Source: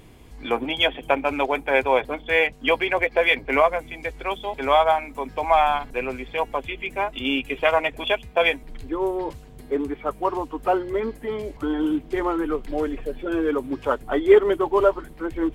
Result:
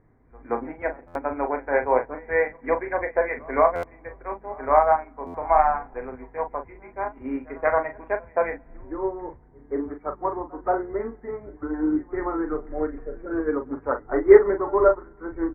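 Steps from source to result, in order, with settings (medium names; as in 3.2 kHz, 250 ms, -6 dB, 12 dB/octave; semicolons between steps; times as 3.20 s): steep low-pass 2 kHz 72 dB/octave; doubling 39 ms -5.5 dB; reverse echo 176 ms -18 dB; on a send at -20.5 dB: reverberation RT60 2.6 s, pre-delay 4 ms; on the sum: buffer glitch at 1.07/3.75/5.26 s, samples 512, times 6; upward expansion 1.5:1, over -37 dBFS; trim +2 dB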